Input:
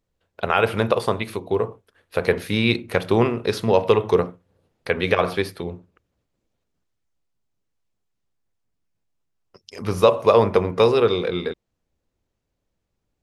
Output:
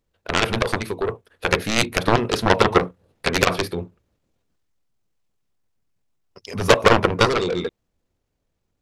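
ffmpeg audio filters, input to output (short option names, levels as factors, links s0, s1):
-af "dynaudnorm=f=280:g=17:m=3.55,aeval=exprs='0.944*(cos(1*acos(clip(val(0)/0.944,-1,1)))-cos(1*PI/2))+0.335*(cos(7*acos(clip(val(0)/0.944,-1,1)))-cos(7*PI/2))':c=same,atempo=1.5,volume=0.891"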